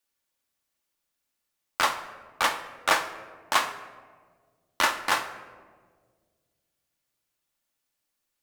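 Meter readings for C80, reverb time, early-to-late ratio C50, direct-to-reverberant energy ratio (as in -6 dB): 12.5 dB, 1.7 s, 10.5 dB, 6.5 dB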